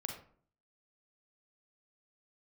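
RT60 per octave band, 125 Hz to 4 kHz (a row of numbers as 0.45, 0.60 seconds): 0.65, 0.65, 0.55, 0.50, 0.40, 0.30 seconds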